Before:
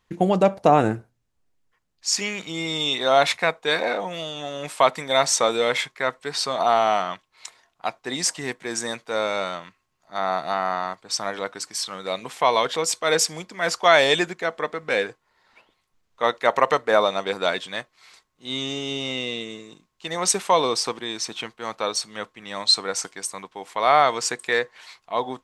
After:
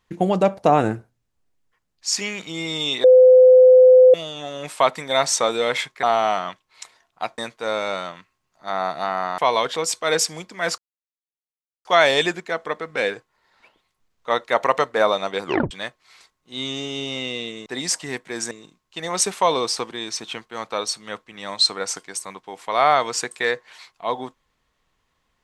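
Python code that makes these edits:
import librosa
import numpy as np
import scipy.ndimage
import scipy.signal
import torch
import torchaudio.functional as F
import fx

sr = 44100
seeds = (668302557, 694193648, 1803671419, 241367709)

y = fx.edit(x, sr, fx.bleep(start_s=3.04, length_s=1.1, hz=510.0, db=-6.5),
    fx.cut(start_s=6.03, length_s=0.63),
    fx.move(start_s=8.01, length_s=0.85, to_s=19.59),
    fx.cut(start_s=10.86, length_s=1.52),
    fx.insert_silence(at_s=13.78, length_s=1.07),
    fx.tape_stop(start_s=17.38, length_s=0.26), tone=tone)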